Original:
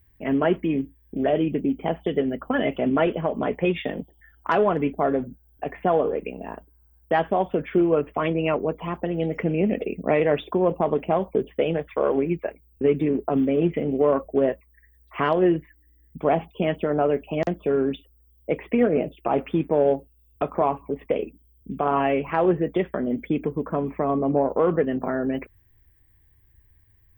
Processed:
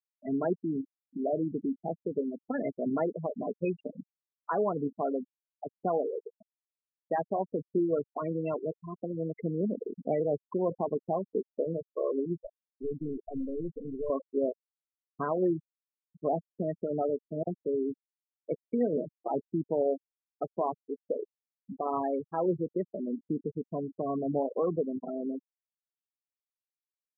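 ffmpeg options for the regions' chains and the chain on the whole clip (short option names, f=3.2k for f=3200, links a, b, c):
-filter_complex "[0:a]asettb=1/sr,asplit=3[a][b][c];[a]atrim=end=12.384[d];[b]atrim=start=12.38:end=14.1,asetpts=PTS-STARTPTS,afade=t=in:d=0.004:c=qsin,afade=t=out:st=1.716:d=0.004:c=qsin,aeval=exprs='(tanh(11.2*val(0)+0.65)-tanh(0.65))/11.2':c=same,bandreject=f=790:w=7.3[e];[c]atrim=start=14.096[f];[d][e]acrossfade=d=0.004:c1=hsin:c2=qsin[g];[g][f]acrossfade=d=0.004:c1=qsin:c2=hsin,afftfilt=real='re*gte(hypot(re,im),0.178)':imag='im*gte(hypot(re,im),0.178)':win_size=1024:overlap=0.75,equalizer=f=2.1k:w=1.9:g=-8,volume=-8dB"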